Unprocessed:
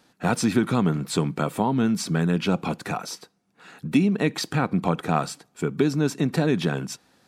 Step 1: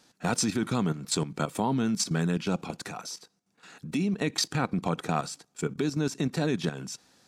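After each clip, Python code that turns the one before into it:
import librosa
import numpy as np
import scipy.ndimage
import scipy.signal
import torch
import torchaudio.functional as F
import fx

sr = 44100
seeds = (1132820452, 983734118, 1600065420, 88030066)

y = fx.peak_eq(x, sr, hz=6300.0, db=8.5, octaves=1.4)
y = fx.level_steps(y, sr, step_db=12)
y = y * librosa.db_to_amplitude(-2.0)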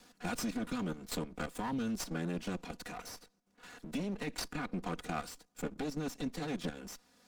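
y = fx.lower_of_two(x, sr, delay_ms=4.1)
y = fx.band_squash(y, sr, depth_pct=40)
y = y * librosa.db_to_amplitude(-8.0)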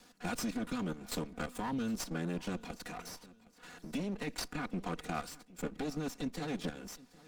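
y = fx.echo_feedback(x, sr, ms=765, feedback_pct=36, wet_db=-21.0)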